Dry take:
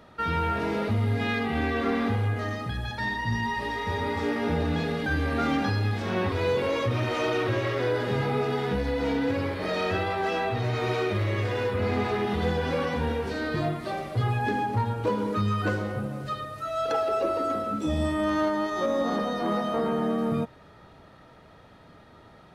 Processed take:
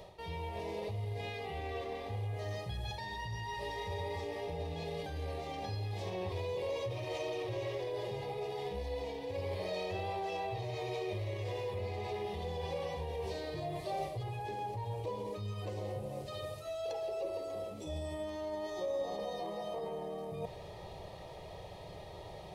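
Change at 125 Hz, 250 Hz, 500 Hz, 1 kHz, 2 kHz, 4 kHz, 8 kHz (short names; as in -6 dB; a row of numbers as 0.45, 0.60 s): -12.0, -19.0, -9.5, -12.0, -16.5, -9.5, -7.5 dB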